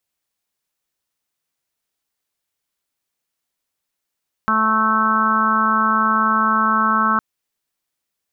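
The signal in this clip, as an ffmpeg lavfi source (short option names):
-f lavfi -i "aevalsrc='0.075*sin(2*PI*219*t)+0.015*sin(2*PI*438*t)+0.0211*sin(2*PI*657*t)+0.0447*sin(2*PI*876*t)+0.119*sin(2*PI*1095*t)+0.133*sin(2*PI*1314*t)+0.0668*sin(2*PI*1533*t)':d=2.71:s=44100"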